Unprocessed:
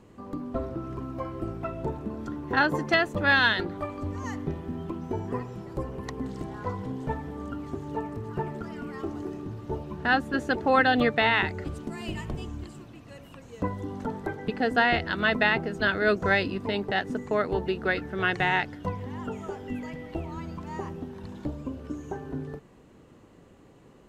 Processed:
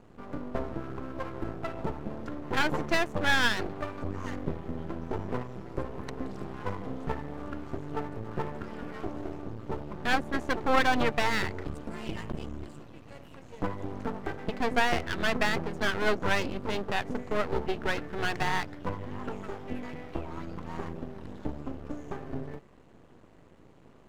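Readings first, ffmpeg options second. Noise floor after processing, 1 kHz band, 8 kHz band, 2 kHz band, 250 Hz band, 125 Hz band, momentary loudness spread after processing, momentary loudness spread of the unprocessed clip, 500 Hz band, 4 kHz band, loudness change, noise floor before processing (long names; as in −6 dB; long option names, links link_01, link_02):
−55 dBFS, −3.0 dB, can't be measured, −5.0 dB, −4.0 dB, −3.0 dB, 13 LU, 15 LU, −3.5 dB, −2.5 dB, −4.0 dB, −54 dBFS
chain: -af "highshelf=frequency=4200:gain=-6.5,aeval=exprs='max(val(0),0)':channel_layout=same,volume=2dB"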